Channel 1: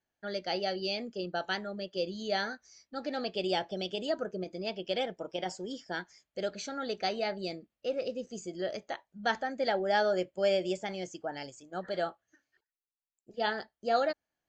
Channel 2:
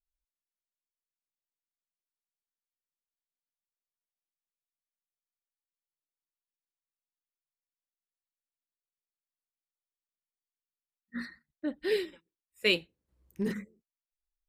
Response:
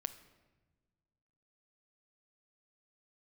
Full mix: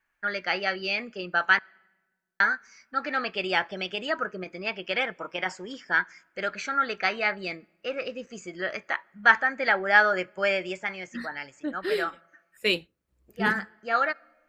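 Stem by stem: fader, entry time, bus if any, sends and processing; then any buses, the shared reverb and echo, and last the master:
-1.0 dB, 0.00 s, muted 1.59–2.4, send -14.5 dB, band shelf 1600 Hz +15.5 dB; auto duck -6 dB, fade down 0.70 s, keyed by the second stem
+1.5 dB, 0.00 s, no send, dry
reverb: on, pre-delay 7 ms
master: dry

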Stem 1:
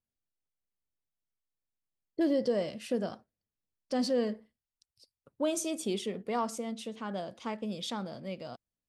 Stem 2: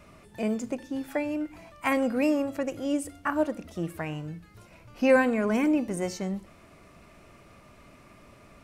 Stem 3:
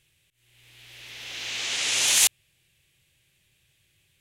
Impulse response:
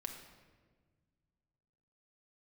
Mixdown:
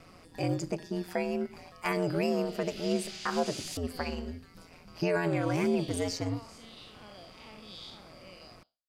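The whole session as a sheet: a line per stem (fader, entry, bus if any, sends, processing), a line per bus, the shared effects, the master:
-3.0 dB, 0.00 s, bus A, no send, time blur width 0.211 s; reverb removal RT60 1.5 s; band shelf 3100 Hz +9 dB 1.1 oct
+1.5 dB, 0.00 s, no bus, no send, ring modulator 85 Hz
-9.0 dB, 1.50 s, bus A, no send, dry
bus A: 0.0 dB, bell 140 Hz -9 dB 2.7 oct; compressor 3:1, threshold -47 dBFS, peak gain reduction 16.5 dB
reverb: off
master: bell 4800 Hz +13.5 dB 0.23 oct; limiter -18.5 dBFS, peak gain reduction 9.5 dB

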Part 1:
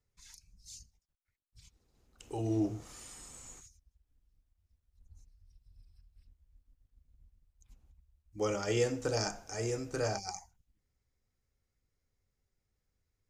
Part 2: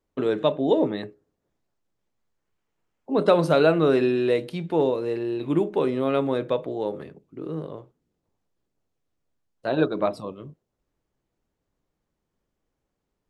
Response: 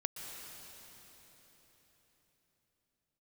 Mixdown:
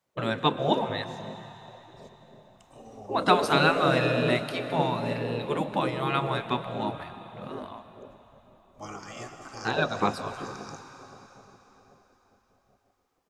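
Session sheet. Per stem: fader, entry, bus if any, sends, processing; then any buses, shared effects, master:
-8.0 dB, 0.40 s, send -3 dB, small resonant body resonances 700/1100 Hz, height 18 dB, ringing for 25 ms; auto duck -12 dB, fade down 1.05 s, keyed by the second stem
+1.0 dB, 0.00 s, send -3.5 dB, dry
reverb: on, RT60 4.3 s, pre-delay 0.113 s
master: spectral gate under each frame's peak -10 dB weak

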